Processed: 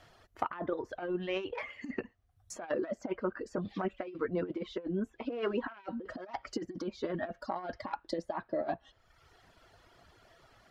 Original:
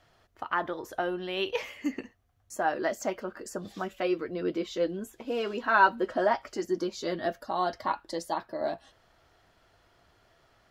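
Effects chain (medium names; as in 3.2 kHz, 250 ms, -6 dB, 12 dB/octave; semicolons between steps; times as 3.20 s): self-modulated delay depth 0.19 ms; reverb removal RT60 0.93 s; compressor with a negative ratio -34 dBFS, ratio -0.5; low-pass that closes with the level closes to 2 kHz, closed at -34 dBFS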